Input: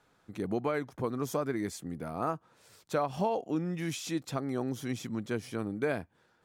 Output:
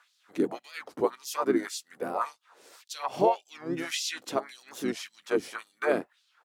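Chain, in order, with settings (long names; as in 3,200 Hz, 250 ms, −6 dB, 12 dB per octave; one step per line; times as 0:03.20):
auto-filter high-pass sine 1.8 Hz 310–4,800 Hz
pitch-shifted copies added −4 semitones −6 dB
wow of a warped record 45 rpm, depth 160 cents
level +3 dB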